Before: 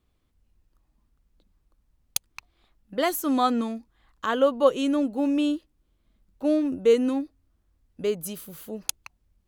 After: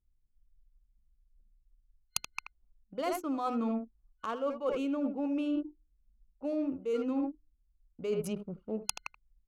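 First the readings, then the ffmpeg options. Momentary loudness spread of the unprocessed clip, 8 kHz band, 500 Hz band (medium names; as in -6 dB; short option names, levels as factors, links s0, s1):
13 LU, -8.0 dB, -10.5 dB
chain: -filter_complex "[0:a]adynamicsmooth=sensitivity=4.5:basefreq=4400,bandreject=f=50:t=h:w=6,bandreject=f=100:t=h:w=6,bandreject=f=150:t=h:w=6,bandreject=f=200:t=h:w=6,bandreject=f=250:t=h:w=6,bandreject=f=300:t=h:w=6,bandreject=f=350:t=h:w=6,bandreject=f=400:t=h:w=6,asplit=2[s0][s1];[s1]adelay=80,highpass=300,lowpass=3400,asoftclip=type=hard:threshold=0.133,volume=0.355[s2];[s0][s2]amix=inputs=2:normalize=0,anlmdn=0.1,superequalizer=11b=0.398:13b=0.501,areverse,acompressor=threshold=0.0224:ratio=20,areverse,adynamicequalizer=threshold=0.00126:dfrequency=3400:dqfactor=0.7:tfrequency=3400:tqfactor=0.7:attack=5:release=100:ratio=0.375:range=3:mode=cutabove:tftype=highshelf,volume=1.58"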